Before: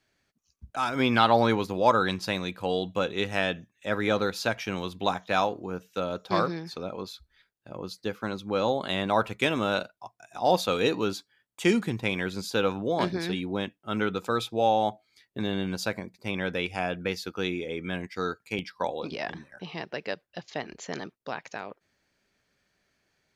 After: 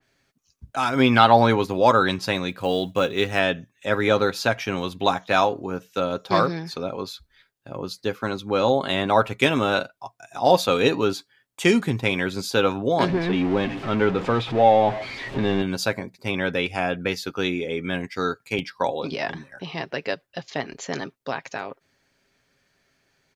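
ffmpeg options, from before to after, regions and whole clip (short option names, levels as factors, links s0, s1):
-filter_complex "[0:a]asettb=1/sr,asplit=3[s0][s1][s2];[s0]atrim=end=2.504[s3];[s1]atrim=start=2.5:end=3.39,asetpts=PTS-STARTPTS,afade=t=in:d=0.004:c=qsin,afade=t=out:st=0.886:d=0.004:c=qsin,bandreject=f=870:w=11,acrusher=bits=8:mode=log:mix=0:aa=0.000001[s4];[s2]atrim=start=3.386[s5];[s3][s4]acrossfade=d=0.004:c1=hsin:c2=qsin[s6];[s6][s5]acrossfade=d=0.004:c1=qsin:c2=hsin,asettb=1/sr,asplit=3[s7][s8][s9];[s7]atrim=end=13.084[s10];[s8]atrim=start=13.08:end=15.62,asetpts=PTS-STARTPTS,afade=t=in:d=0.004:c=qsin,afade=t=out:st=2.536:d=0.004:c=qsin,aeval=exprs='val(0)+0.5*0.0355*sgn(val(0))':c=same,lowpass=2500,equalizer=f=1400:t=o:w=0.36:g=-5[s11];[s9]atrim=start=15.616[s12];[s10][s11]acrossfade=d=0.004:c1=hsin:c2=qsin[s13];[s13][s12]acrossfade=d=0.004:c1=qsin:c2=hsin,aecho=1:1:7.4:0.34,adynamicequalizer=threshold=0.0141:dfrequency=2700:dqfactor=0.7:tfrequency=2700:tqfactor=0.7:attack=5:release=100:ratio=0.375:range=1.5:mode=cutabove:tftype=highshelf,volume=1.88"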